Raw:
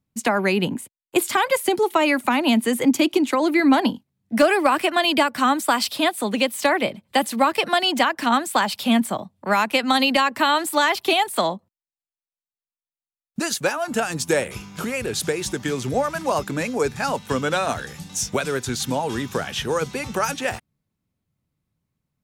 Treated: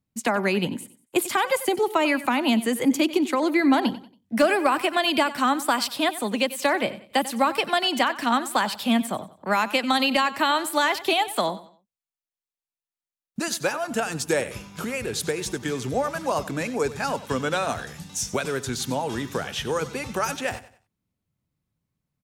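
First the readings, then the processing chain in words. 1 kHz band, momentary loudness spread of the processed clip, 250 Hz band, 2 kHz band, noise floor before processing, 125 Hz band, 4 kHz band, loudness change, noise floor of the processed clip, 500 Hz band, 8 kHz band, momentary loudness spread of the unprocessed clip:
−3.0 dB, 8 LU, −3.0 dB, −3.0 dB, below −85 dBFS, −3.0 dB, −3.0 dB, −3.0 dB, below −85 dBFS, −3.0 dB, −3.0 dB, 8 LU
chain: repeating echo 93 ms, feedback 32%, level −16 dB
level −3 dB

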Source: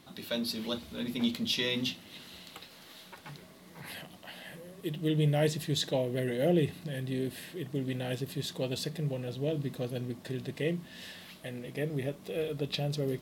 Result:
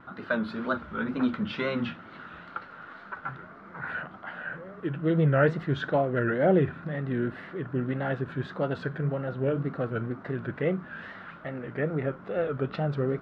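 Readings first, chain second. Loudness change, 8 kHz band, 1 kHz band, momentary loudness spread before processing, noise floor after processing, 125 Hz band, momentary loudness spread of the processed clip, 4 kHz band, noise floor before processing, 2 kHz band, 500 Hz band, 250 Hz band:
+3.5 dB, below −20 dB, +11.0 dB, 18 LU, −48 dBFS, +4.0 dB, 16 LU, −10.5 dB, −53 dBFS, +8.5 dB, +5.0 dB, +4.0 dB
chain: tape wow and flutter 140 cents
low-pass with resonance 1,400 Hz, resonance Q 7.8
level +4 dB

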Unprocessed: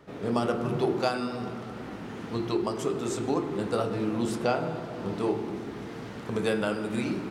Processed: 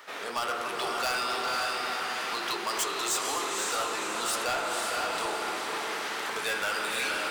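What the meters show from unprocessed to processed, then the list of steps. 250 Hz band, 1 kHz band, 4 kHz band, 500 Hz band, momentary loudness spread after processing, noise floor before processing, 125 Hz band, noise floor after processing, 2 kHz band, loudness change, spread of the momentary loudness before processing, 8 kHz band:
−14.0 dB, +4.5 dB, +10.5 dB, −6.0 dB, 4 LU, −40 dBFS, −20.0 dB, −35 dBFS, +9.0 dB, +0.5 dB, 11 LU, +13.0 dB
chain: sub-octave generator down 1 octave, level −4 dB
in parallel at −1.5 dB: compressor whose output falls as the input rises −33 dBFS
on the sum: high-pass filter 1,200 Hz 12 dB per octave
on a send: feedback delay with all-pass diffusion 519 ms, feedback 48%, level −3.5 dB
on the sum: hard clipping −31.5 dBFS, distortion −11 dB
high-shelf EQ 10,000 Hz +5.5 dB
level +6 dB

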